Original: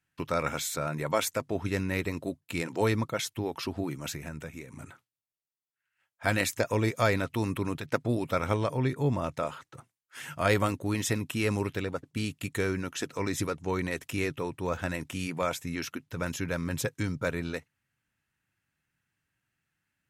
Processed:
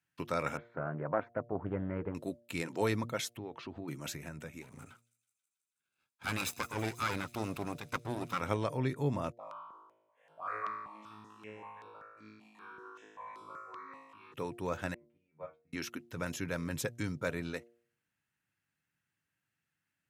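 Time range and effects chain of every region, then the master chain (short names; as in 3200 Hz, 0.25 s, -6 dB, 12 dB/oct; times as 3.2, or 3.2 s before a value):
0.57–2.15 LPF 1400 Hz 24 dB/oct + Doppler distortion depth 0.56 ms
3.37–3.88 compressor 2:1, threshold -37 dBFS + air absorption 150 m + notch 5200 Hz, Q 6
4.62–8.41 minimum comb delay 0.79 ms + thin delay 0.162 s, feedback 71%, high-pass 5000 Hz, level -15.5 dB
9.32–14.34 auto-wah 390–1100 Hz, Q 6.4, up, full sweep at -31.5 dBFS + flutter echo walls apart 3.2 m, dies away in 1.2 s + step phaser 5.2 Hz 390–6600 Hz
14.94–15.73 LPF 1400 Hz + metallic resonator 75 Hz, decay 0.42 s, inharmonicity 0.002 + upward expander 2.5:1, over -50 dBFS
whole clip: HPF 92 Hz; de-hum 117.4 Hz, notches 6; gain -4.5 dB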